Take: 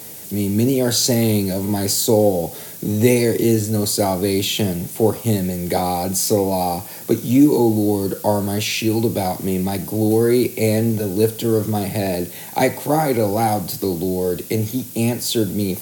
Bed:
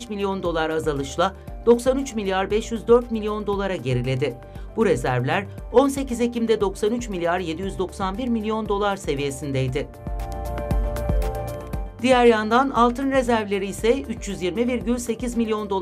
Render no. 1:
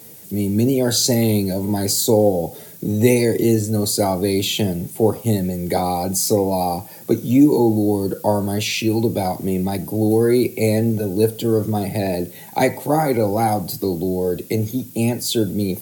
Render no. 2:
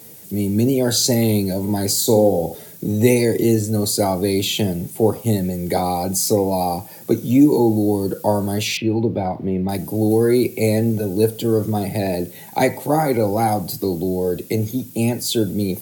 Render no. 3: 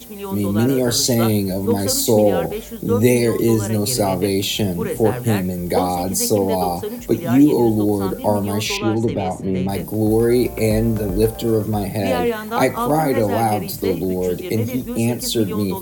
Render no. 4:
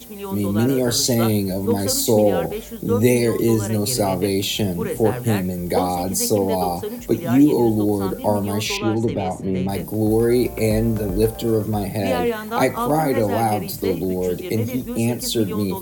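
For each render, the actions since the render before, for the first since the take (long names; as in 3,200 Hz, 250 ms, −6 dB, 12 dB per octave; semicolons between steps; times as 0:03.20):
broadband denoise 8 dB, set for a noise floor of −35 dBFS
0:02.01–0:02.55: flutter between parallel walls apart 10.4 metres, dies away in 0.35 s; 0:07.32–0:08.06: floating-point word with a short mantissa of 8 bits; 0:08.77–0:09.69: high-frequency loss of the air 370 metres
mix in bed −5.5 dB
level −1.5 dB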